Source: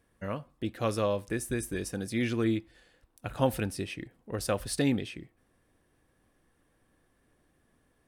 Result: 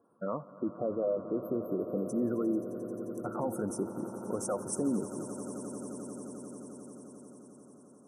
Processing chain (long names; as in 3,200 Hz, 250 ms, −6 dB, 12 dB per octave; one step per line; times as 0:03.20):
meter weighting curve A
gate on every frequency bin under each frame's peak −15 dB strong
high-pass filter 100 Hz
time-frequency box erased 0:00.56–0:02.10, 760–12,000 Hz
Chebyshev band-stop filter 1,400–5,900 Hz, order 5
low-shelf EQ 480 Hz +10.5 dB
in parallel at −2 dB: downward compressor, threshold −39 dBFS, peak gain reduction 17.5 dB
on the sum: brickwall limiter −23.5 dBFS, peak gain reduction 11 dB
on a send: echo that builds up and dies away 88 ms, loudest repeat 8, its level −16.5 dB